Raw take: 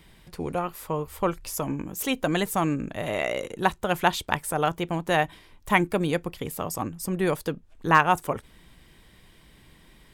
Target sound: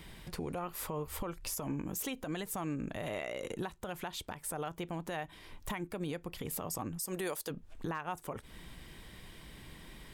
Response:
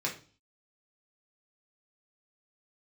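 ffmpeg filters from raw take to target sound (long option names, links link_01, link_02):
-filter_complex "[0:a]asplit=3[link_01][link_02][link_03];[link_01]afade=type=out:start_time=6.98:duration=0.02[link_04];[link_02]bass=frequency=250:gain=-13,treble=frequency=4000:gain=9,afade=type=in:start_time=6.98:duration=0.02,afade=type=out:start_time=7.49:duration=0.02[link_05];[link_03]afade=type=in:start_time=7.49:duration=0.02[link_06];[link_04][link_05][link_06]amix=inputs=3:normalize=0,acompressor=threshold=-33dB:ratio=16,alimiter=level_in=6.5dB:limit=-24dB:level=0:latency=1:release=84,volume=-6.5dB,volume=3dB"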